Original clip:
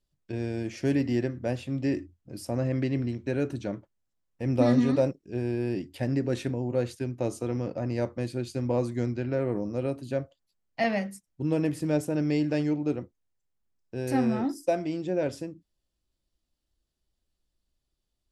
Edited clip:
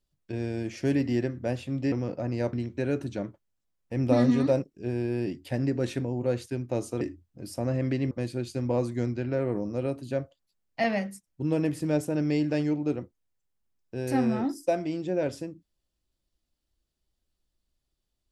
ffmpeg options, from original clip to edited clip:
-filter_complex "[0:a]asplit=5[a][b][c][d][e];[a]atrim=end=1.922[f];[b]atrim=start=7.498:end=8.112[g];[c]atrim=start=3.018:end=7.502[h];[d]atrim=start=1.918:end=3.022[i];[e]atrim=start=8.108[j];[f][g]acrossfade=d=0.004:c1=hsin:c2=hsin[k];[k][h]acrossfade=d=0.004:c1=hsin:c2=hsin[l];[l][i]acrossfade=d=0.004:c1=hsin:c2=hsin[m];[m][j]acrossfade=d=0.004:c1=hsin:c2=hsin"

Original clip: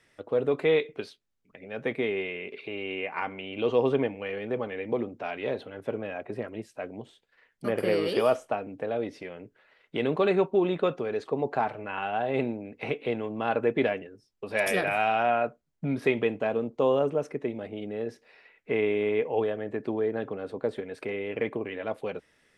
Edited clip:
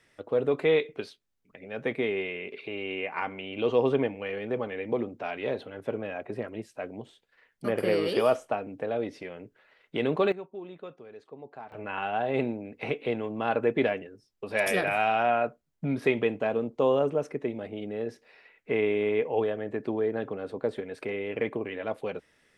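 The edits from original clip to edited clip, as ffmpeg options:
-filter_complex "[0:a]asplit=3[a][b][c];[a]atrim=end=10.32,asetpts=PTS-STARTPTS,afade=t=out:st=10.18:d=0.14:c=log:silence=0.149624[d];[b]atrim=start=10.32:end=11.72,asetpts=PTS-STARTPTS,volume=-16.5dB[e];[c]atrim=start=11.72,asetpts=PTS-STARTPTS,afade=t=in:d=0.14:c=log:silence=0.149624[f];[d][e][f]concat=n=3:v=0:a=1"

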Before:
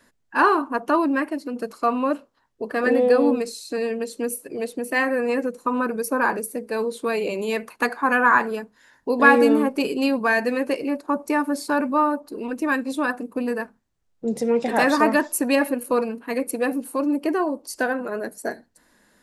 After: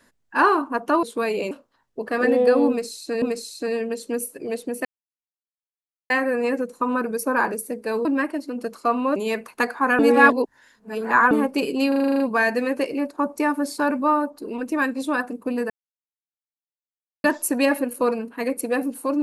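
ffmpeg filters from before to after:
-filter_complex "[0:a]asplit=19[a][b][c][d][e][f][g][h][i][j][k][l][m][n][o][p][q][r][s];[a]atrim=end=1.032[t];[b]atrim=start=6.898:end=7.382[u];[c]atrim=start=2.138:end=3.852[v];[d]atrim=start=3.318:end=4.95,asetpts=PTS-STARTPTS,afade=t=out:st=1.628:d=0.004:c=hsin,apad=pad_dur=1.25[w];[e]atrim=start=4.95:end=6.902,asetpts=PTS-STARTPTS,afade=t=in:d=0.004:c=hsin[x];[f]atrim=start=1.028:end=2.142[y];[g]atrim=start=7.378:end=8.212[z];[h]atrim=start=8.208:end=9.532,asetpts=PTS-STARTPTS,areverse[aa];[i]atrim=start=9.528:end=10.142[ab];[j]atrim=start=10.098:end=10.142[ac];[k]atrim=start=10.098:end=10.142[ad];[l]atrim=start=10.098:end=10.142[ae];[m]atrim=start=10.098:end=10.142[af];[n]atrim=start=10.098:end=10.142[ag];[o]atrim=start=10.098:end=10.142[ah];[p]atrim=start=10.098:end=10.142[ai];[q]atrim=start=10.098:end=13.6,asetpts=PTS-STARTPTS,afade=t=out:st=3.498:d=0.004:c=hsin[aj];[r]atrim=start=13.6:end=15.14,asetpts=PTS-STARTPTS,volume=0[ak];[s]atrim=start=15.14,asetpts=PTS-STARTPTS,afade=t=in:d=0.004:c=hsin[al];[t][u]acrossfade=d=0.004:c1=hsin:c2=hsin[am];[am][v]acrossfade=d=0.004:c1=hsin:c2=hsin[an];[w][x]concat=n=2:v=0:a=1[ao];[an][ao]acrossfade=d=0.004:c1=hsin:c2=hsin[ap];[ap][y]acrossfade=d=0.004:c1=hsin:c2=hsin[aq];[aq][z]acrossfade=d=0.004:c1=hsin:c2=hsin[ar];[ar][aa]acrossfade=d=0.004:c1=hsin:c2=hsin[as];[as][ab]acrossfade=d=0.004:c1=hsin:c2=hsin[at];[at][ac]acrossfade=d=0.004:c1=hsin:c2=hsin[au];[au][ad]acrossfade=d=0.004:c1=hsin:c2=hsin[av];[av][ae]acrossfade=d=0.004:c1=hsin:c2=hsin[aw];[aw][af]acrossfade=d=0.004:c1=hsin:c2=hsin[ax];[ax][ag]acrossfade=d=0.004:c1=hsin:c2=hsin[ay];[ay][ah]acrossfade=d=0.004:c1=hsin:c2=hsin[az];[az][ai]acrossfade=d=0.004:c1=hsin:c2=hsin[ba];[aj][ak][al]concat=n=3:v=0:a=1[bb];[ba][bb]acrossfade=d=0.004:c1=hsin:c2=hsin"

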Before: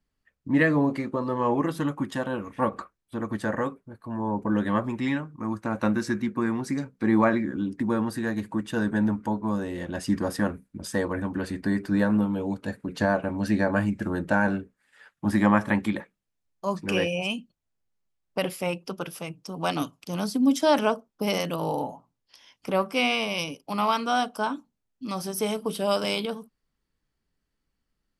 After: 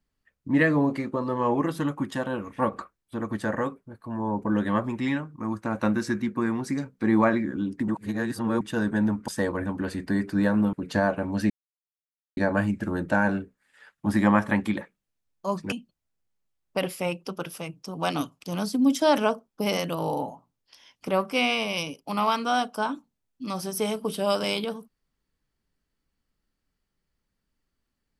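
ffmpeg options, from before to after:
-filter_complex "[0:a]asplit=7[a][b][c][d][e][f][g];[a]atrim=end=7.882[h];[b]atrim=start=7.878:end=8.612,asetpts=PTS-STARTPTS,areverse[i];[c]atrim=start=8.608:end=9.282[j];[d]atrim=start=10.838:end=12.292[k];[e]atrim=start=12.788:end=13.56,asetpts=PTS-STARTPTS,afade=t=out:st=0.768:d=0.004:c=hsin,apad=pad_dur=0.87[l];[f]atrim=start=13.56:end=16.912,asetpts=PTS-STARTPTS,afade=t=in:d=0.004:c=hsin[m];[g]atrim=start=17.328[n];[h][i]acrossfade=d=0.004:c1=hsin:c2=hsin[o];[o][j]acrossfade=d=0.004:c1=hsin:c2=hsin[p];[p][k]acrossfade=d=0.004:c1=hsin:c2=hsin[q];[l][m]concat=n=2:v=0:a=1[r];[q][r]acrossfade=d=0.004:c1=hsin:c2=hsin[s];[s][n]acrossfade=d=0.004:c1=hsin:c2=hsin"

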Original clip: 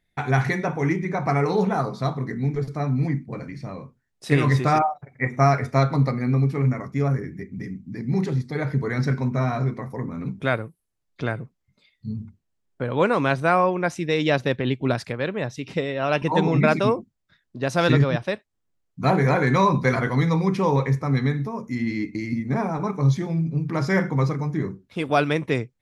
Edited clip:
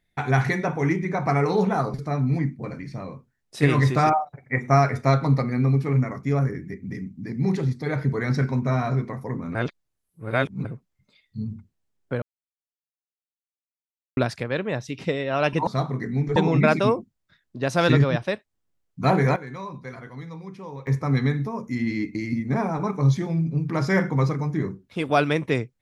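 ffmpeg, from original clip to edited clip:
-filter_complex "[0:a]asplit=10[a][b][c][d][e][f][g][h][i][j];[a]atrim=end=1.942[k];[b]atrim=start=2.628:end=10.242[l];[c]atrim=start=10.238:end=11.342,asetpts=PTS-STARTPTS,areverse[m];[d]atrim=start=11.338:end=12.91,asetpts=PTS-STARTPTS,afade=t=out:st=1.568:d=0.004:c=hsin[n];[e]atrim=start=12.91:end=14.86,asetpts=PTS-STARTPTS,volume=0[o];[f]atrim=start=14.86:end=16.362,asetpts=PTS-STARTPTS,afade=t=in:d=0.004:c=hsin[p];[g]atrim=start=1.938:end=2.632[q];[h]atrim=start=16.358:end=19.36,asetpts=PTS-STARTPTS,afade=t=out:st=2.752:d=0.25:c=log:silence=0.141254[r];[i]atrim=start=19.36:end=20.87,asetpts=PTS-STARTPTS,volume=-17dB[s];[j]atrim=start=20.87,asetpts=PTS-STARTPTS,afade=t=in:d=0.25:c=log:silence=0.141254[t];[k][l]acrossfade=d=0.004:c1=hsin:c2=hsin[u];[u][m]acrossfade=d=0.004:c1=hsin:c2=hsin[v];[n][o][p]concat=n=3:v=0:a=1[w];[v][w]acrossfade=d=0.004:c1=hsin:c2=hsin[x];[x][q]acrossfade=d=0.004:c1=hsin:c2=hsin[y];[r][s][t]concat=n=3:v=0:a=1[z];[y][z]acrossfade=d=0.004:c1=hsin:c2=hsin"

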